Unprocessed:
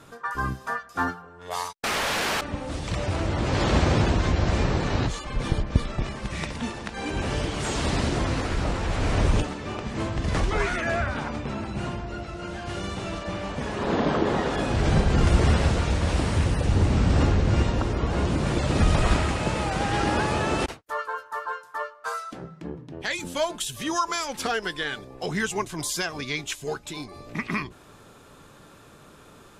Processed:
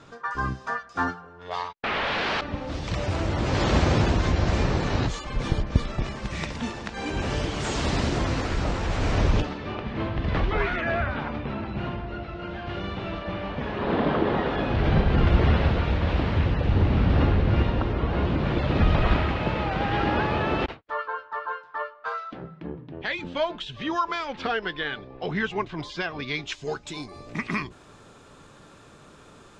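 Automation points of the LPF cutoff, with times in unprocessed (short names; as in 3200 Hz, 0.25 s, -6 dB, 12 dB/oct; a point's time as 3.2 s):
LPF 24 dB/oct
1.3 s 6500 Hz
1.77 s 3100 Hz
3.1 s 7400 Hz
9.06 s 7400 Hz
9.86 s 3700 Hz
26.12 s 3700 Hz
27.09 s 8900 Hz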